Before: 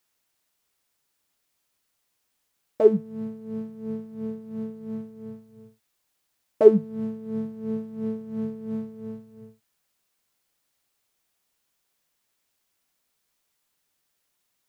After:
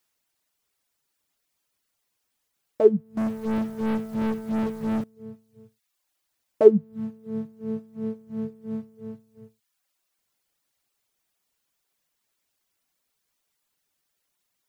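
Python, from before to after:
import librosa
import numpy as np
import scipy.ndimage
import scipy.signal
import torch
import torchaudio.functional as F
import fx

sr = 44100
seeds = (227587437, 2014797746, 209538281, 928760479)

y = fx.dereverb_blind(x, sr, rt60_s=0.76)
y = fx.leveller(y, sr, passes=5, at=(3.17, 5.04))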